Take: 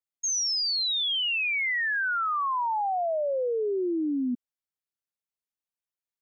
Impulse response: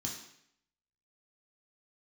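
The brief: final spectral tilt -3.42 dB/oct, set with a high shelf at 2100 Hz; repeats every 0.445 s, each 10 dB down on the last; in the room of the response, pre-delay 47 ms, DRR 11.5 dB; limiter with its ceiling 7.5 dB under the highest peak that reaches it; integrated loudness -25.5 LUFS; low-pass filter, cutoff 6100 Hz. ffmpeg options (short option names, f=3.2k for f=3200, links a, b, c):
-filter_complex "[0:a]lowpass=6.1k,highshelf=f=2.1k:g=8.5,alimiter=level_in=1.5dB:limit=-24dB:level=0:latency=1,volume=-1.5dB,aecho=1:1:445|890|1335|1780:0.316|0.101|0.0324|0.0104,asplit=2[a][b];[1:a]atrim=start_sample=2205,adelay=47[c];[b][c]afir=irnorm=-1:irlink=0,volume=-11dB[d];[a][d]amix=inputs=2:normalize=0,volume=1dB"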